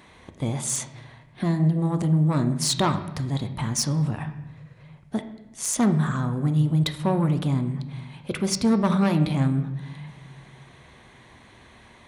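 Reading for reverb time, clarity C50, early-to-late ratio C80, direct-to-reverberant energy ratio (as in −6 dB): 1.0 s, 11.0 dB, 13.0 dB, 7.5 dB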